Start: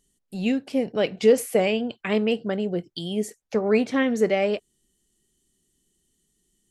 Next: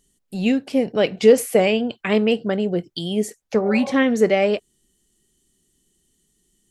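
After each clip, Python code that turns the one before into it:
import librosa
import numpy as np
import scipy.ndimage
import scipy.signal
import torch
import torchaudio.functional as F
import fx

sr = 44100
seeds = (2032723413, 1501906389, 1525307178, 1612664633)

y = fx.spec_repair(x, sr, seeds[0], start_s=3.68, length_s=0.22, low_hz=410.0, high_hz=1100.0, source='both')
y = F.gain(torch.from_numpy(y), 4.5).numpy()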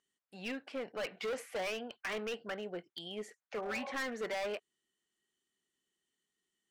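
y = fx.bandpass_q(x, sr, hz=1500.0, q=1.2)
y = np.clip(y, -10.0 ** (-28.0 / 20.0), 10.0 ** (-28.0 / 20.0))
y = F.gain(torch.from_numpy(y), -6.0).numpy()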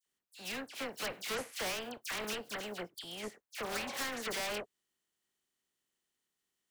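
y = fx.spec_flatten(x, sr, power=0.54)
y = fx.dispersion(y, sr, late='lows', ms=65.0, hz=2100.0)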